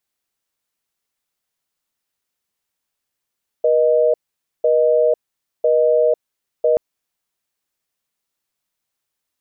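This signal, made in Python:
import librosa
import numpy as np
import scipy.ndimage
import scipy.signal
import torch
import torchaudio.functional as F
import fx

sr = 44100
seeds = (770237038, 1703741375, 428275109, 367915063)

y = fx.call_progress(sr, length_s=3.13, kind='busy tone', level_db=-14.5)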